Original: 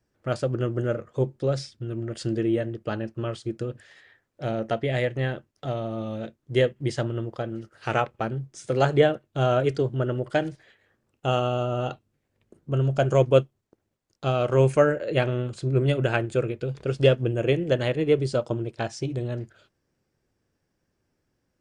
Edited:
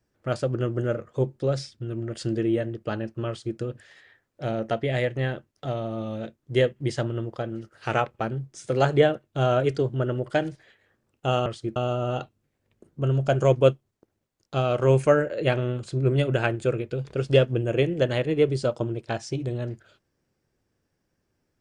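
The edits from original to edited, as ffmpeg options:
ffmpeg -i in.wav -filter_complex "[0:a]asplit=3[link_01][link_02][link_03];[link_01]atrim=end=11.462[link_04];[link_02]atrim=start=3.278:end=3.582[link_05];[link_03]atrim=start=11.458[link_06];[link_04][link_05]acrossfade=duration=0.004:curve1=hsin:curve2=hsin[link_07];[link_07][link_06]acrossfade=duration=0.004:curve1=hsin:curve2=hsin" out.wav

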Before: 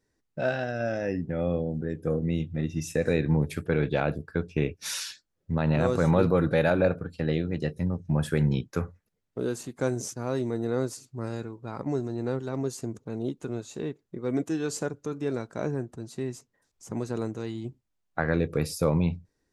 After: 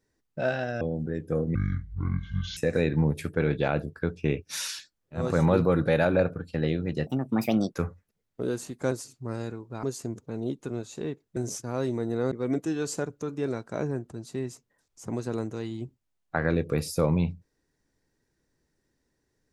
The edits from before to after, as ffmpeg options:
ffmpeg -i in.wav -filter_complex "[0:a]asplit=11[link_01][link_02][link_03][link_04][link_05][link_06][link_07][link_08][link_09][link_10][link_11];[link_01]atrim=end=0.812[link_12];[link_02]atrim=start=1.558:end=2.304[link_13];[link_03]atrim=start=2.3:end=2.89,asetpts=PTS-STARTPTS,asetrate=25578,aresample=44100,atrim=end_sample=44860,asetpts=PTS-STARTPTS[link_14];[link_04]atrim=start=2.886:end=5.67[link_15];[link_05]atrim=start=5.76:end=7.724[link_16];[link_06]atrim=start=7.72:end=8.73,asetpts=PTS-STARTPTS,asetrate=64827,aresample=44100[link_17];[link_07]atrim=start=8.726:end=9.892[link_18];[link_08]atrim=start=10.838:end=11.762[link_19];[link_09]atrim=start=12.618:end=14.152[link_20];[link_10]atrim=start=9.888:end=10.842[link_21];[link_11]atrim=start=14.148[link_22];[link_12][link_13]acrossfade=duration=0.004:curve1=hsin:curve2=hsin[link_23];[link_23][link_14]acrossfade=duration=0.004:curve1=hsin:curve2=hsin[link_24];[link_24][link_15]acrossfade=duration=0.004:curve1=hsin:curve2=hsin[link_25];[link_25][link_16]acrossfade=duration=0.24:curve1=tri:curve2=tri[link_26];[link_26][link_17]acrossfade=duration=0.004:curve1=hsin:curve2=hsin[link_27];[link_27][link_18]acrossfade=duration=0.004:curve1=hsin:curve2=hsin[link_28];[link_28][link_19]acrossfade=duration=0.004:curve1=hsin:curve2=hsin[link_29];[link_29][link_20]acrossfade=duration=0.004:curve1=hsin:curve2=hsin[link_30];[link_30][link_21]acrossfade=duration=0.004:curve1=hsin:curve2=hsin[link_31];[link_31][link_22]acrossfade=duration=0.004:curve1=hsin:curve2=hsin" out.wav

